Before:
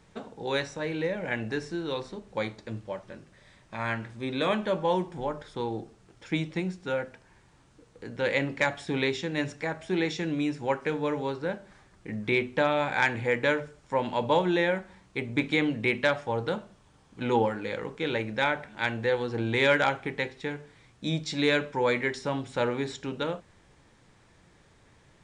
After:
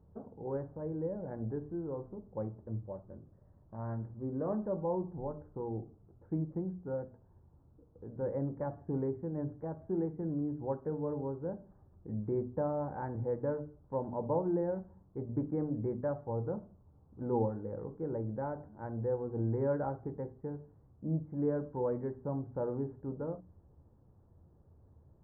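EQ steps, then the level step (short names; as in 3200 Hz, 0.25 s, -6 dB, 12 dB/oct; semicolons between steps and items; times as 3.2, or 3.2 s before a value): Gaussian blur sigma 10 samples; bell 80 Hz +11 dB 1.1 oct; notches 60/120/180/240/300 Hz; -5.0 dB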